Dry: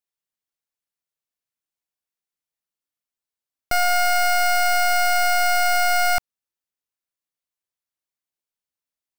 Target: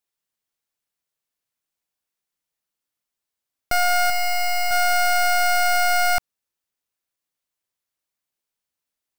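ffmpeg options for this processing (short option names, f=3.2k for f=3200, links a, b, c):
-filter_complex "[0:a]asettb=1/sr,asplit=3[a][b][c];[a]atrim=end=4.104[d];[b]atrim=start=4.1:end=4.71,asetpts=PTS-STARTPTS,afade=t=in:d=0.004:c=qsin,afade=t=out:st=0.606:d=0.004:c=qsin,aecho=1:1:1:0.75,atrim=end_sample=26901[e];[c]atrim=start=4.706[f];[d][e]acrossfade=d=0.004:c1=hsin:c2=qsin[g];[g][f]acrossfade=d=0.004:c1=qsin:c2=hsin,alimiter=limit=-23dB:level=0:latency=1,volume=5dB"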